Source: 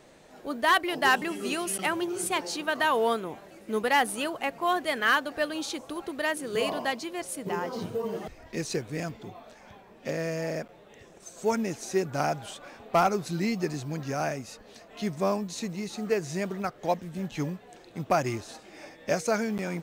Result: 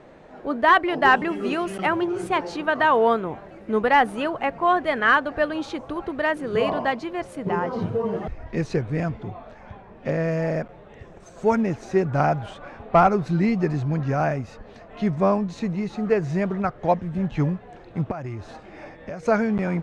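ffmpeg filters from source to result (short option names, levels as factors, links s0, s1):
-filter_complex "[0:a]asettb=1/sr,asplit=3[s0][s1][s2];[s0]atrim=end=10.284[s3];[s1]atrim=start=10.28:end=11.62,asetpts=PTS-STARTPTS,afade=t=in:d=0.004:c=qsin,afade=t=out:st=1.336:d=0.004:c=qsin,highshelf=f=6900:g=5[s4];[s2]atrim=start=11.616[s5];[s3][s4]acrossfade=d=0.004:c1=hsin:c2=qsin[s6];[s6][s5]acrossfade=d=0.004:c1=qsin:c2=hsin,asettb=1/sr,asplit=3[s7][s8][s9];[s7]atrim=end=18.114[s10];[s8]atrim=start=18.11:end=19.23,asetpts=PTS-STARTPTS,afade=t=in:d=0.004:c=qsin,afade=t=out:st=1.116:d=0.004:c=qsin,acompressor=threshold=0.0112:ratio=4:attack=3.2:release=140:knee=1:detection=peak[s11];[s9]atrim=start=19.226[s12];[s10][s11]acrossfade=d=0.004:c1=hsin:c2=qsin[s13];[s13][s12]acrossfade=d=0.004:c1=qsin:c2=hsin,asubboost=boost=2.5:cutoff=150,lowpass=1600,aemphasis=mode=production:type=50fm,volume=2.51"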